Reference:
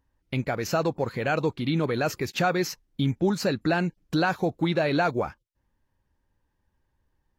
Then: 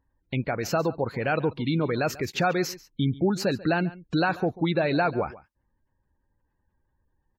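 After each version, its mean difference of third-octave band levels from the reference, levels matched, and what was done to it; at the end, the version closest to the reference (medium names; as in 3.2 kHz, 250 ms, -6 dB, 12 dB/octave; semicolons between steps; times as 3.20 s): 4.5 dB: spectral gate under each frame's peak -30 dB strong; delay 140 ms -19 dB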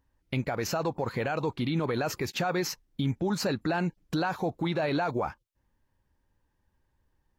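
2.5 dB: dynamic bell 910 Hz, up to +6 dB, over -41 dBFS, Q 1.7; peak limiter -20.5 dBFS, peak gain reduction 10.5 dB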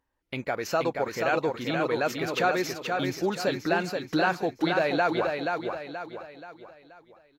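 6.0 dB: tone controls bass -12 dB, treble -4 dB; feedback delay 479 ms, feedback 42%, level -4.5 dB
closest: second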